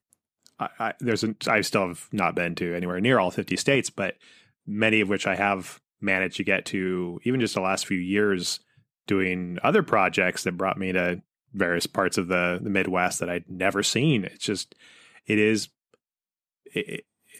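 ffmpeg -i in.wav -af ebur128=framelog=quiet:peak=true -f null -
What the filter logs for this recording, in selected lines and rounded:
Integrated loudness:
  I:         -25.0 LUFS
  Threshold: -35.6 LUFS
Loudness range:
  LRA:         1.8 LU
  Threshold: -45.3 LUFS
  LRA low:   -26.4 LUFS
  LRA high:  -24.6 LUFS
True peak:
  Peak:       -6.9 dBFS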